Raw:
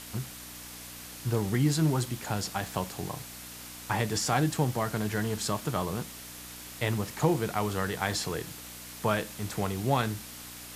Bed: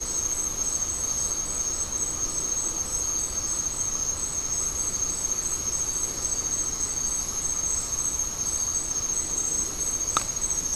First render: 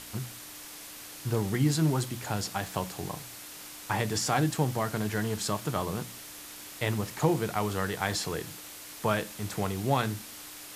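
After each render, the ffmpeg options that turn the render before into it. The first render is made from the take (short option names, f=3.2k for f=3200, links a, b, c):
-af "bandreject=f=60:t=h:w=4,bandreject=f=120:t=h:w=4,bandreject=f=180:t=h:w=4,bandreject=f=240:t=h:w=4"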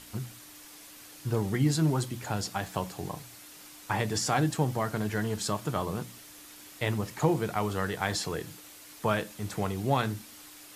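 -af "afftdn=nr=6:nf=-45"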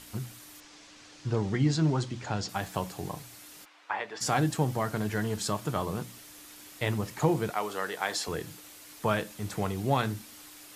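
-filter_complex "[0:a]asettb=1/sr,asplit=3[a][b][c];[a]atrim=end=0.604[d];[b]atrim=start=0.6:end=2.49,asetpts=PTS-STARTPTS,afade=t=in:d=0.004:c=qsin,afade=t=out:st=1.886:d=0.004:c=qsin,lowpass=f=6.7k:w=0.5412,lowpass=f=6.7k:w=1.3066[e];[c]atrim=start=2.486[f];[d][e]acrossfade=d=0.004:c1=hsin:c2=qsin[g];[g][f]acrossfade=d=0.004:c1=qsin:c2=hsin,asplit=3[h][i][j];[h]afade=t=out:st=3.64:d=0.02[k];[i]highpass=650,lowpass=2.6k,afade=t=in:st=3.64:d=0.02,afade=t=out:st=4.2:d=0.02[l];[j]afade=t=in:st=4.2:d=0.02[m];[k][l][m]amix=inputs=3:normalize=0,asettb=1/sr,asplit=3[n][o][p];[n]atrim=end=7.504[q];[o]atrim=start=7.5:end=8.28,asetpts=PTS-STARTPTS,afade=t=in:d=0.004:c=qsin,afade=t=out:st=0.776:d=0.004:c=qsin,highpass=370[r];[p]atrim=start=8.276[s];[q][r]acrossfade=d=0.004:c1=hsin:c2=qsin[t];[t][s]acrossfade=d=0.004:c1=qsin:c2=hsin"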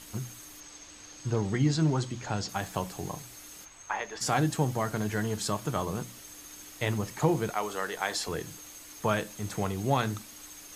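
-filter_complex "[1:a]volume=-23.5dB[a];[0:a][a]amix=inputs=2:normalize=0"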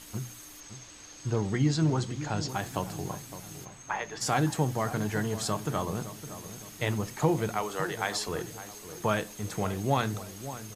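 -filter_complex "[0:a]asplit=2[a][b];[b]adelay=562,lowpass=f=1.3k:p=1,volume=-12dB,asplit=2[c][d];[d]adelay=562,lowpass=f=1.3k:p=1,volume=0.49,asplit=2[e][f];[f]adelay=562,lowpass=f=1.3k:p=1,volume=0.49,asplit=2[g][h];[h]adelay=562,lowpass=f=1.3k:p=1,volume=0.49,asplit=2[i][j];[j]adelay=562,lowpass=f=1.3k:p=1,volume=0.49[k];[a][c][e][g][i][k]amix=inputs=6:normalize=0"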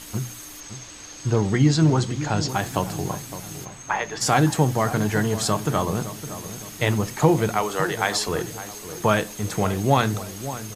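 -af "volume=8dB"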